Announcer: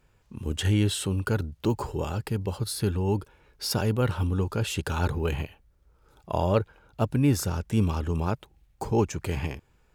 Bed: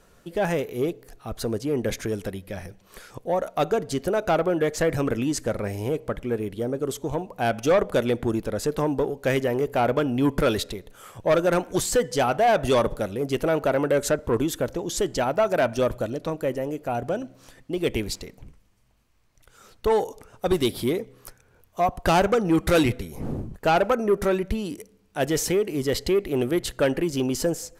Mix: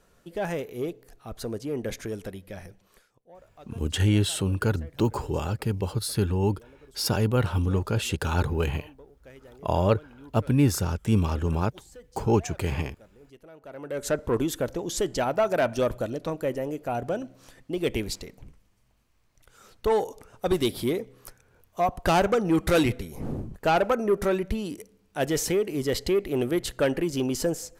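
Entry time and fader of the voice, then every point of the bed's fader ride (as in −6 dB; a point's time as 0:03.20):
3.35 s, +1.5 dB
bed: 0:02.84 −5.5 dB
0:03.15 −26.5 dB
0:13.56 −26.5 dB
0:14.15 −2 dB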